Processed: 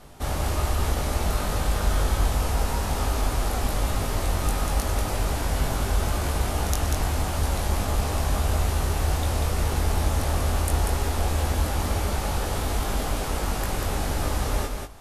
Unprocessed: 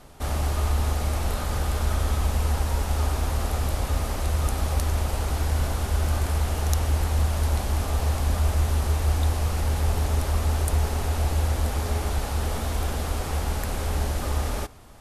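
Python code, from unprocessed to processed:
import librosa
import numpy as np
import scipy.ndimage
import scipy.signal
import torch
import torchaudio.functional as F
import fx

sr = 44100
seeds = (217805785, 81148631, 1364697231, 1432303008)

y = fx.doubler(x, sr, ms=20.0, db=-4.5)
y = y + 10.0 ** (-4.5 / 20.0) * np.pad(y, (int(191 * sr / 1000.0), 0))[:len(y)]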